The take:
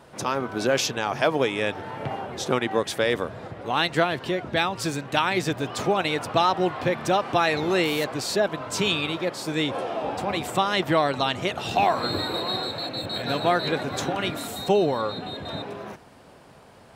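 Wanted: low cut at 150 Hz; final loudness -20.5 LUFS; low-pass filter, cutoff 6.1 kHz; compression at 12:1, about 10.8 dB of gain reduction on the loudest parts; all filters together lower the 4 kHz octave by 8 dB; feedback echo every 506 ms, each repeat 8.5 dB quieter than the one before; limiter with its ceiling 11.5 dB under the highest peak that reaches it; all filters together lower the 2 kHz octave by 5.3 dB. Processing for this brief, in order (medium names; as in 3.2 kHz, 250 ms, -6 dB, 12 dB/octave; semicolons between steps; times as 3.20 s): high-pass 150 Hz; low-pass 6.1 kHz; peaking EQ 2 kHz -5 dB; peaking EQ 4 kHz -7.5 dB; compression 12:1, threshold -28 dBFS; peak limiter -27.5 dBFS; feedback delay 506 ms, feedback 38%, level -8.5 dB; trim +16 dB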